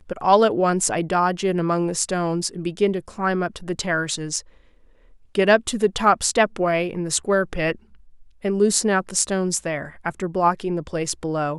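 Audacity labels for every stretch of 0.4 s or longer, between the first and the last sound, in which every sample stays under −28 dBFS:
4.400000	5.350000	silence
7.750000	8.450000	silence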